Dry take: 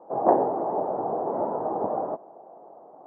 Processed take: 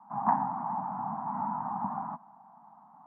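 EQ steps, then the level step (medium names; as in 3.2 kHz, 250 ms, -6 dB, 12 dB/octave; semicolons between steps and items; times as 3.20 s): high-pass 150 Hz 12 dB/octave; elliptic band-stop 220–920 Hz, stop band 80 dB; distance through air 200 m; +4.0 dB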